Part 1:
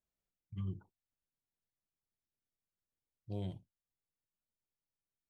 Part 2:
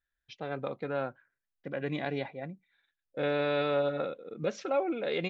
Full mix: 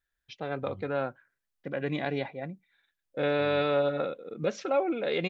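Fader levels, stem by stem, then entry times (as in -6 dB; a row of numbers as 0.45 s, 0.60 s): -8.0 dB, +2.5 dB; 0.10 s, 0.00 s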